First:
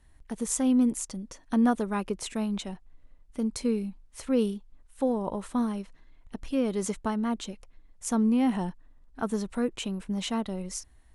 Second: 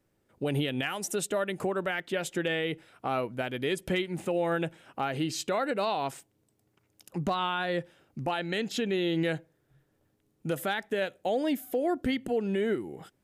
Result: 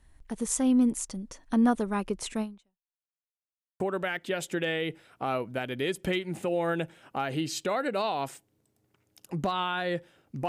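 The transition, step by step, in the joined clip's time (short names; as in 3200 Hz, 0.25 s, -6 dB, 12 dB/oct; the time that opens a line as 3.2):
first
2.41–3.11 fade out exponential
3.11–3.8 mute
3.8 switch to second from 1.63 s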